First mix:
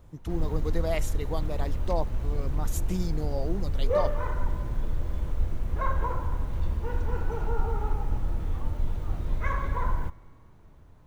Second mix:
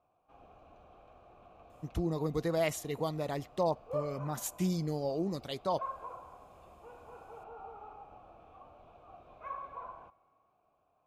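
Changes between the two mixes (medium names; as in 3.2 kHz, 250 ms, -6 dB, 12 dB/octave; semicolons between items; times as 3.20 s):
speech: entry +1.70 s; background: add vowel filter a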